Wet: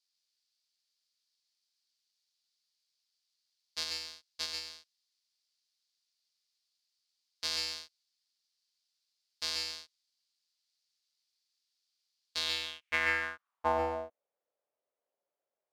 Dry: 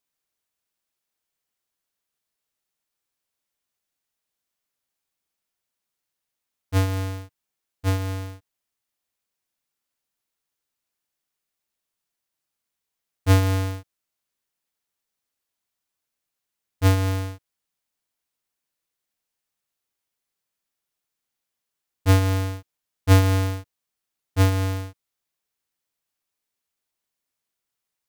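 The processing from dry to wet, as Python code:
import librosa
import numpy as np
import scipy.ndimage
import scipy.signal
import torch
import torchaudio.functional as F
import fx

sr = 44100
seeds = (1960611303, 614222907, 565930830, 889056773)

p1 = fx.low_shelf(x, sr, hz=110.0, db=-10.5)
p2 = fx.over_compress(p1, sr, threshold_db=-25.0, ratio=-1.0)
p3 = p1 + F.gain(torch.from_numpy(p2), 2.0).numpy()
p4 = fx.filter_sweep_bandpass(p3, sr, from_hz=4600.0, to_hz=560.0, start_s=21.99, end_s=25.07, q=4.2)
p5 = fx.stretch_grains(p4, sr, factor=0.56, grain_ms=22.0)
p6 = p5 + fx.echo_single(p5, sr, ms=137, db=-5.0, dry=0)
y = F.gain(torch.from_numpy(p6), 4.0).numpy()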